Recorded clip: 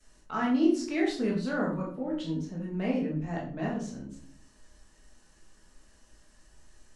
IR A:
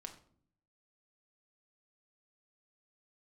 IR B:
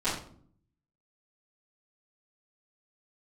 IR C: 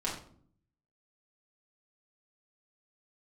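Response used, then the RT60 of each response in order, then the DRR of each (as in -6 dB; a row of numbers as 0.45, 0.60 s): B; 0.55, 0.55, 0.55 s; 4.0, -14.5, -6.0 dB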